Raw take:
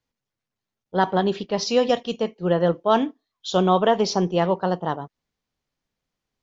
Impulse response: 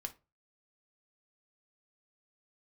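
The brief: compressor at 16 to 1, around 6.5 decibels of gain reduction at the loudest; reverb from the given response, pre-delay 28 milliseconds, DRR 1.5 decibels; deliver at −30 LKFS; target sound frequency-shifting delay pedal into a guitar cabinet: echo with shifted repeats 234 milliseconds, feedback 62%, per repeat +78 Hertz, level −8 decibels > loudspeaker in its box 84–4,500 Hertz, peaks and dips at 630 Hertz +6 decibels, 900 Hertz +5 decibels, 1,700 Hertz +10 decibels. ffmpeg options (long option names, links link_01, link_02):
-filter_complex "[0:a]acompressor=threshold=-19dB:ratio=16,asplit=2[link_01][link_02];[1:a]atrim=start_sample=2205,adelay=28[link_03];[link_02][link_03]afir=irnorm=-1:irlink=0,volume=1dB[link_04];[link_01][link_04]amix=inputs=2:normalize=0,asplit=9[link_05][link_06][link_07][link_08][link_09][link_10][link_11][link_12][link_13];[link_06]adelay=234,afreqshift=78,volume=-8dB[link_14];[link_07]adelay=468,afreqshift=156,volume=-12.2dB[link_15];[link_08]adelay=702,afreqshift=234,volume=-16.3dB[link_16];[link_09]adelay=936,afreqshift=312,volume=-20.5dB[link_17];[link_10]adelay=1170,afreqshift=390,volume=-24.6dB[link_18];[link_11]adelay=1404,afreqshift=468,volume=-28.8dB[link_19];[link_12]adelay=1638,afreqshift=546,volume=-32.9dB[link_20];[link_13]adelay=1872,afreqshift=624,volume=-37.1dB[link_21];[link_05][link_14][link_15][link_16][link_17][link_18][link_19][link_20][link_21]amix=inputs=9:normalize=0,highpass=84,equalizer=frequency=630:width_type=q:width=4:gain=6,equalizer=frequency=900:width_type=q:width=4:gain=5,equalizer=frequency=1700:width_type=q:width=4:gain=10,lowpass=frequency=4500:width=0.5412,lowpass=frequency=4500:width=1.3066,volume=-9dB"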